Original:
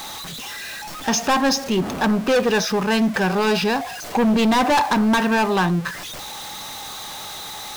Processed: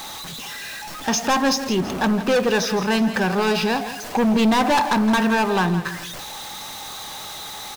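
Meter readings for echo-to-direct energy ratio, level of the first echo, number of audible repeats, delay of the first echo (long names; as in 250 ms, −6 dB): −11.5 dB, −12.0 dB, 2, 166 ms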